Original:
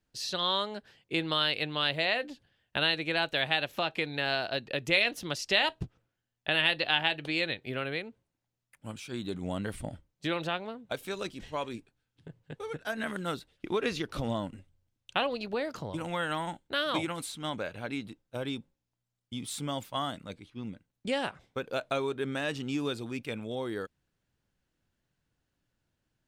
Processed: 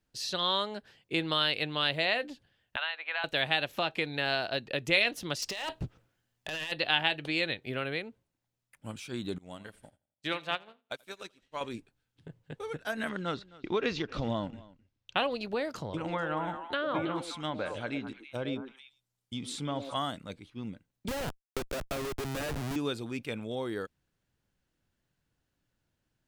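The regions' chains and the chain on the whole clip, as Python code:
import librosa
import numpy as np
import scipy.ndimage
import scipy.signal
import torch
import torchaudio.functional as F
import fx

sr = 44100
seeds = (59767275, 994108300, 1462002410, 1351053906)

y = fx.chain(x, sr, fx.highpass(hz=830.0, slope=24),
    fx.air_absorb(metres=450.0),
    fx.band_squash(depth_pct=100), at=(2.76, 3.24))
y = fx.chain(y, sr, fx.over_compress(threshold_db=-34.0, ratio=-1.0),
    fx.clip_hard(threshold_db=-30.0), at=(5.42, 6.72))
y = fx.chain(y, sr, fx.tilt_shelf(db=-4.0, hz=680.0),
    fx.echo_feedback(ms=84, feedback_pct=50, wet_db=-12.0),
    fx.upward_expand(threshold_db=-50.0, expansion=2.5), at=(9.38, 11.61))
y = fx.chain(y, sr, fx.lowpass(hz=5900.0, slope=24),
    fx.echo_single(ms=262, db=-21.0), at=(13.09, 15.17))
y = fx.chain(y, sr, fx.env_lowpass_down(base_hz=1500.0, full_db=-28.0),
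    fx.high_shelf(hz=5700.0, db=6.5),
    fx.echo_stepped(ms=108, hz=410.0, octaves=1.4, feedback_pct=70, wet_db=-3.0), at=(15.75, 19.94))
y = fx.chain(y, sr, fx.law_mismatch(coded='A'),
    fx.schmitt(flips_db=-37.5),
    fx.band_squash(depth_pct=100), at=(21.08, 22.76))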